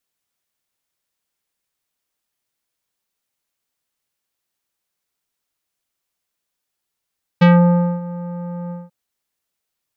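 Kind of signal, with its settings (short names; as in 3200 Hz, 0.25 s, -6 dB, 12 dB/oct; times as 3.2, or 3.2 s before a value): synth note square F3 24 dB/oct, low-pass 1100 Hz, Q 0.72, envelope 2 oct, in 0.19 s, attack 13 ms, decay 0.58 s, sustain -19 dB, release 0.19 s, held 1.30 s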